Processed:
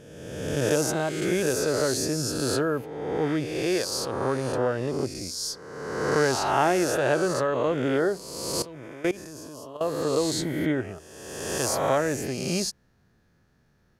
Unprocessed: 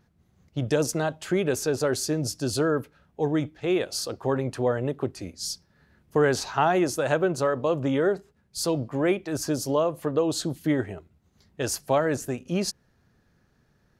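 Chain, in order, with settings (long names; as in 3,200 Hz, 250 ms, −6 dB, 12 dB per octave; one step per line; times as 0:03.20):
peak hold with a rise ahead of every peak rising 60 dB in 1.45 s
0:08.62–0:09.81: output level in coarse steps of 19 dB
level −3 dB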